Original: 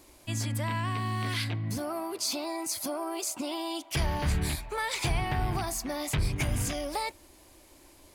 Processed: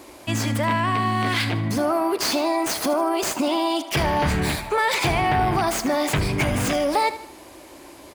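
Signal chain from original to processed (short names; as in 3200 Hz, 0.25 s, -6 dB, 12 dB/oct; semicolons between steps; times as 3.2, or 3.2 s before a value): tracing distortion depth 0.06 ms; HPF 250 Hz 6 dB/oct; high shelf 3000 Hz -9.5 dB; in parallel at +2.5 dB: limiter -32.5 dBFS, peak gain reduction 10.5 dB; on the sum: feedback echo 77 ms, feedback 45%, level -14 dB; gain +9 dB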